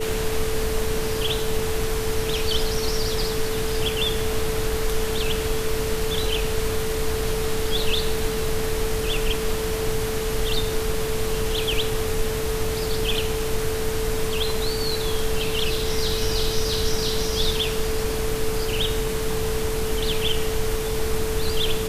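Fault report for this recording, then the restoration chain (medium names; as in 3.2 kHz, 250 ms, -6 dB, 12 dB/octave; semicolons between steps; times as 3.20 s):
whine 440 Hz -26 dBFS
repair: band-stop 440 Hz, Q 30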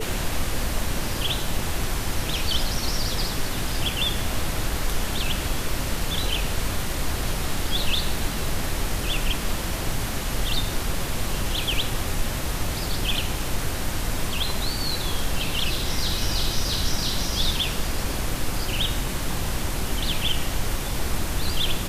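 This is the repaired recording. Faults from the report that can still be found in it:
nothing left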